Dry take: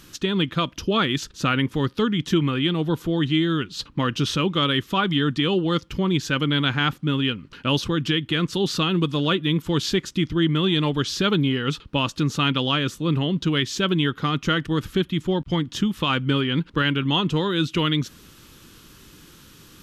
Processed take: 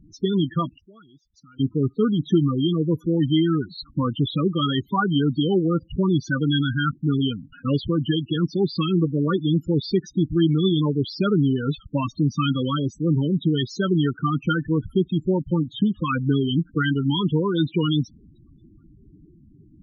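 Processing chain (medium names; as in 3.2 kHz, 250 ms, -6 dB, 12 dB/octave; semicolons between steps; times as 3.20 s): 0.74–1.60 s: inverted gate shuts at -27 dBFS, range -29 dB; loudest bins only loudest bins 8; trim +2 dB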